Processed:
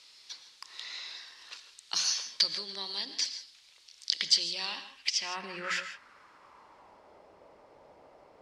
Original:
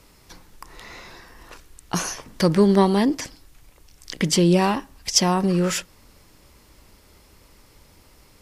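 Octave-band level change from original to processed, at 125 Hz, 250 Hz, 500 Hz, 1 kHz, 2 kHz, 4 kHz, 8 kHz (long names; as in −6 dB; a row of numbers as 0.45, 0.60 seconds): below −30 dB, −32.5 dB, −26.0 dB, −17.0 dB, −5.0 dB, −0.5 dB, −8.0 dB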